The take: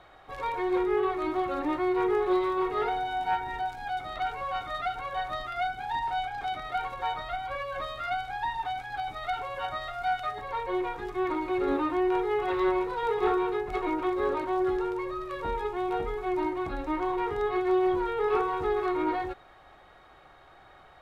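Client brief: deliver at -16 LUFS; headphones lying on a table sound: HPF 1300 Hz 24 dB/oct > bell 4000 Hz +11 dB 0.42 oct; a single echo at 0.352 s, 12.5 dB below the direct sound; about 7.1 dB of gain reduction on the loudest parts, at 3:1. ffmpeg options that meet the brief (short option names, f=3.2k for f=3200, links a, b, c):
-af "acompressor=threshold=-31dB:ratio=3,highpass=f=1.3k:w=0.5412,highpass=f=1.3k:w=1.3066,equalizer=f=4k:t=o:w=0.42:g=11,aecho=1:1:352:0.237,volume=24.5dB"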